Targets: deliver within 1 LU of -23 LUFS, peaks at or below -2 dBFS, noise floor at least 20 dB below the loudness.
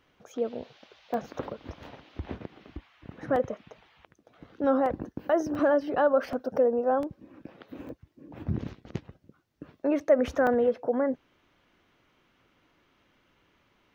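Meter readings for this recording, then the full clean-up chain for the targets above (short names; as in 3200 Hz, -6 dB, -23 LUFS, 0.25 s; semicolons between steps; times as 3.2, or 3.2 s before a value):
dropouts 8; longest dropout 1.6 ms; loudness -28.0 LUFS; peak -11.5 dBFS; loudness target -23.0 LUFS
-> interpolate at 1.14/3.36/4.86/5.55/6.33/7.03/7.89/10.47, 1.6 ms; gain +5 dB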